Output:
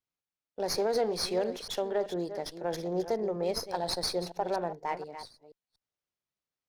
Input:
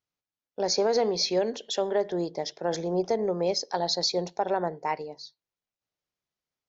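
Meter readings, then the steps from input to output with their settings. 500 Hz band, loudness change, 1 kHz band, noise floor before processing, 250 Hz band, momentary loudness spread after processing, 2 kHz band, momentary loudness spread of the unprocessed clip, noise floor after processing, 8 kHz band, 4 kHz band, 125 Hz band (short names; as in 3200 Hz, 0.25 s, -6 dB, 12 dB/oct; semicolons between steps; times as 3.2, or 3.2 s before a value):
-4.0 dB, -4.5 dB, -4.0 dB, under -85 dBFS, -4.5 dB, 8 LU, -3.5 dB, 8 LU, under -85 dBFS, n/a, -6.0 dB, -4.0 dB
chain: reverse delay 0.24 s, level -11 dB; running maximum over 3 samples; gain -4.5 dB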